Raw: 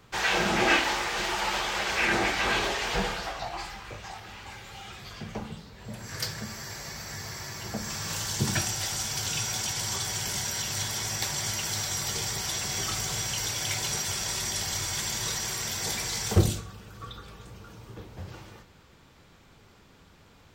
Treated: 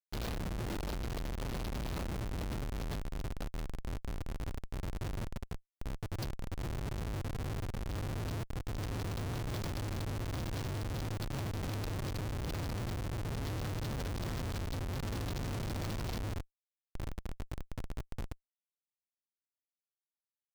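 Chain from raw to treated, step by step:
drawn EQ curve 120 Hz 0 dB, 290 Hz −11 dB, 690 Hz −13 dB, 2,100 Hz −27 dB, 4,200 Hz +1 dB, 6,100 Hz −11 dB
downward compressor 16 to 1, threshold −46 dBFS, peak gain reduction 30.5 dB
comparator with hysteresis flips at −44 dBFS
level +14 dB

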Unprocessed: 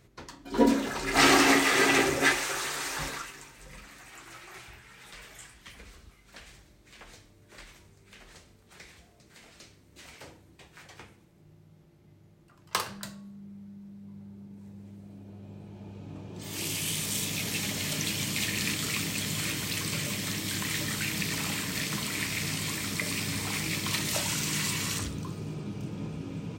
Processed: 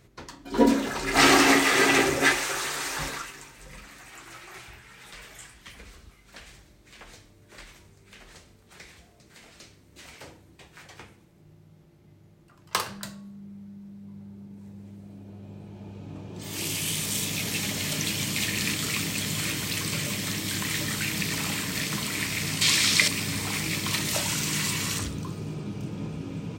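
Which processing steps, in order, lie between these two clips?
0:22.61–0:23.08: parametric band 4,200 Hz +13.5 dB 2.7 octaves
level +2.5 dB

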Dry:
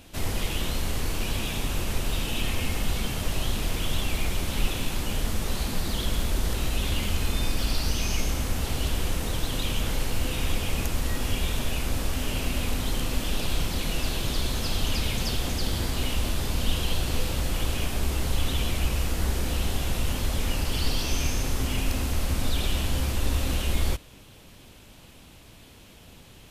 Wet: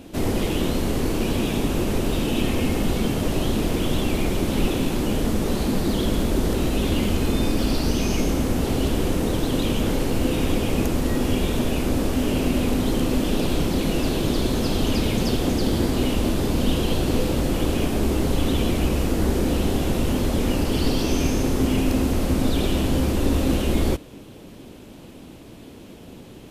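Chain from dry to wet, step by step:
parametric band 310 Hz +14.5 dB 2.4 octaves

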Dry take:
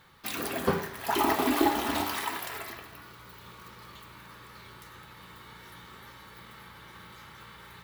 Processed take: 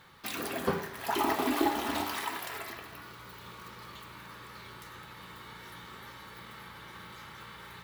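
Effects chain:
high-shelf EQ 11,000 Hz −3.5 dB
in parallel at 0 dB: downward compressor, threshold −43 dBFS, peak gain reduction 21.5 dB
on the sum: low-shelf EQ 74 Hz −5.5 dB
level −4 dB

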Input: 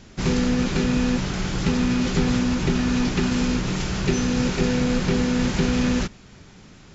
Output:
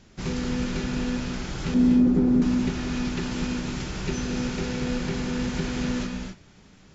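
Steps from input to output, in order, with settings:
0:01.74–0:02.42: drawn EQ curve 140 Hz 0 dB, 240 Hz +12 dB, 3,000 Hz −16 dB
reverb whose tail is shaped and stops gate 290 ms rising, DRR 3.5 dB
level −7.5 dB

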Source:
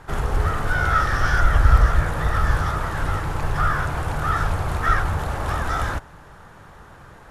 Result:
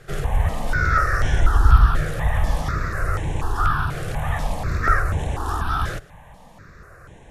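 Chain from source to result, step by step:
step-sequenced phaser 4.1 Hz 250–4,700 Hz
level +2 dB

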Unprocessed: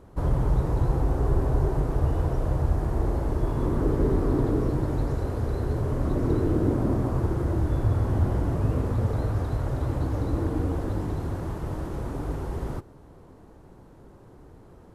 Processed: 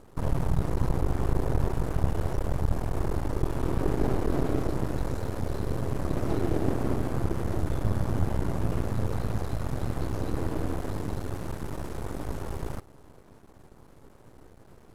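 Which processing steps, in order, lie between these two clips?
half-wave rectification
pitch-shifted copies added +4 semitones −12 dB
high-shelf EQ 3,200 Hz +8 dB

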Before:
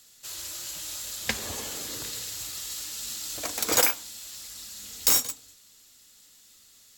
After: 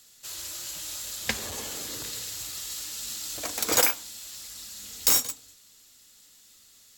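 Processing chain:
0:01.46–0:03.57: saturating transformer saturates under 880 Hz

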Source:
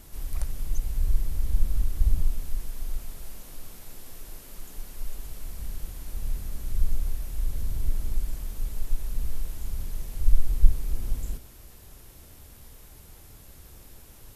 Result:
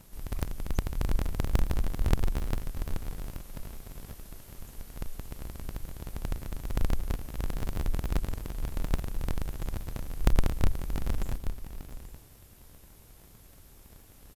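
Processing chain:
sub-harmonics by changed cycles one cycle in 3, inverted
multi-tap delay 686/829 ms −13.5/−11 dB
hard clipping −8 dBFS, distortion −17 dB
level −6 dB

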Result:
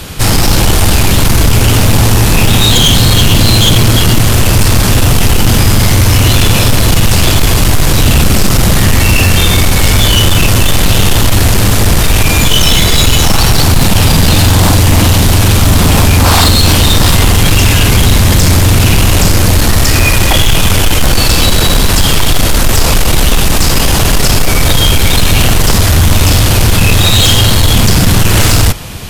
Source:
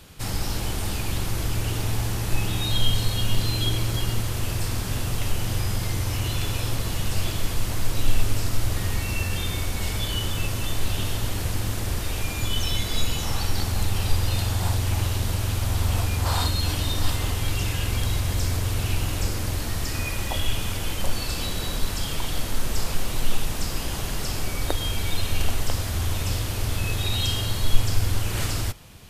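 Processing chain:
sine wavefolder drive 19 dB, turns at −2.5 dBFS

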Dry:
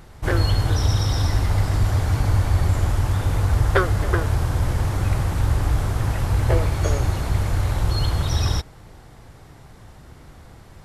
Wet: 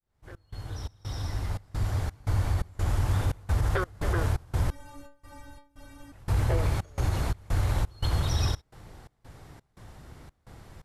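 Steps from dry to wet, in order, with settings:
fade in at the beginning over 3.46 s
brickwall limiter −13.5 dBFS, peak gain reduction 8.5 dB
gate pattern "xx.xx.xxx." 86 BPM −24 dB
0:04.70–0:06.12: stiff-string resonator 280 Hz, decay 0.39 s, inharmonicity 0.008
level −3.5 dB

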